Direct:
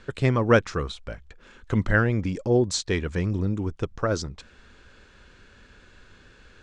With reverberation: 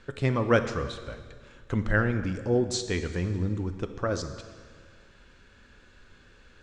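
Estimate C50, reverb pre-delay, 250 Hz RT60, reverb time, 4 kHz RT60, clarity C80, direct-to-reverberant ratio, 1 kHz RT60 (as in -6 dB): 10.0 dB, 3 ms, 2.0 s, 1.8 s, 1.6 s, 11.0 dB, 8.0 dB, 1.7 s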